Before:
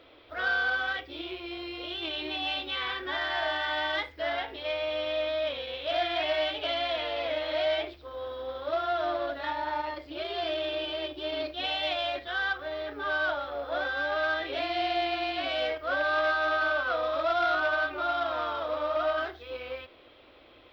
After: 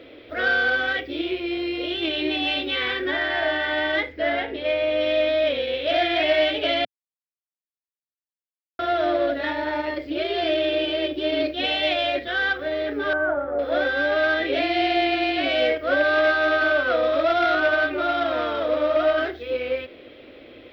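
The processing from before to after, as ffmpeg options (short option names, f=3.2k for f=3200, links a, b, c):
-filter_complex "[0:a]asettb=1/sr,asplit=3[a][b][c];[a]atrim=end=3.114[d];[b]atrim=start=3.11:end=5.01,asetpts=PTS-STARTPTS,afade=t=in:d=0.004:c=qsin,afade=t=out:st=1.896:d=0.004:c=qsin,highshelf=f=4.4k:g=-9.5[e];[c]atrim=start=5.006[f];[d][e]acrossfade=d=0.004:c1=hsin:c2=qsin[g];[g][f]acrossfade=d=0.004:c1=qsin:c2=hsin,asettb=1/sr,asplit=3[h][i][j];[h]atrim=end=13.134[k];[i]atrim=start=13.13:end=13.59,asetpts=PTS-STARTPTS,afade=t=in:d=0.004:c=qsin,afade=t=out:st=0.456:d=0.004:c=qsin,lowpass=f=1.5k:w=0.5412,lowpass=f=1.5k:w=1.3066[l];[j]atrim=start=13.586[m];[k][l]acrossfade=d=0.004:c1=hsin:c2=qsin[n];[n][m]acrossfade=d=0.004:c1=qsin:c2=hsin,asplit=3[o][p][q];[o]atrim=end=6.85,asetpts=PTS-STARTPTS,afade=t=out:st=6.846:d=0.004:c=hsin[r];[p]atrim=start=6.85:end=8.79,asetpts=PTS-STARTPTS,volume=0[s];[q]atrim=start=8.79,asetpts=PTS-STARTPTS,afade=t=in:d=0.004:c=hsin[t];[r][s][t]concat=n=3:v=0:a=1,equalizer=f=125:t=o:w=1:g=5,equalizer=f=250:t=o:w=1:g=9,equalizer=f=500:t=o:w=1:g=8,equalizer=f=1k:t=o:w=1:g=-8,equalizer=f=2k:t=o:w=1:g=7,volume=4.5dB"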